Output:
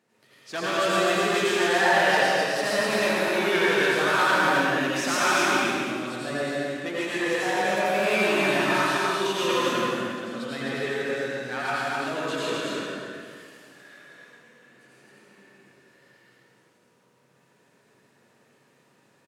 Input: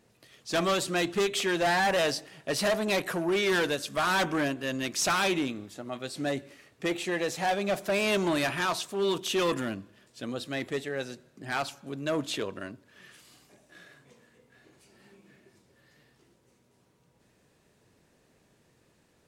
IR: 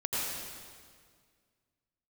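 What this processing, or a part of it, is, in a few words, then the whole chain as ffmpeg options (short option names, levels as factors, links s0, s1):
stadium PA: -filter_complex "[0:a]highpass=f=130:w=0.5412,highpass=f=130:w=1.3066,equalizer=f=1500:t=o:w=2:g=6,aecho=1:1:160.3|256.6:0.355|0.708[s0];[1:a]atrim=start_sample=2205[s1];[s0][s1]afir=irnorm=-1:irlink=0,volume=0.447"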